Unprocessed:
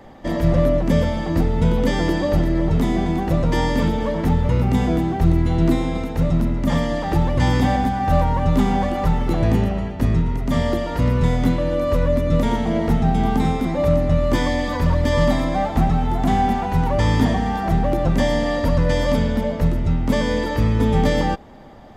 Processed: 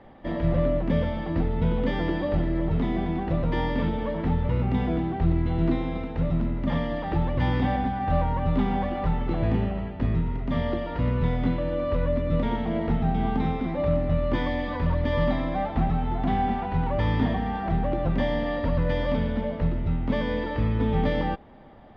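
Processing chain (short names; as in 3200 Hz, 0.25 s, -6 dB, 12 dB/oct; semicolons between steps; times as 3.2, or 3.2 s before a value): LPF 3600 Hz 24 dB/oct; gain -6.5 dB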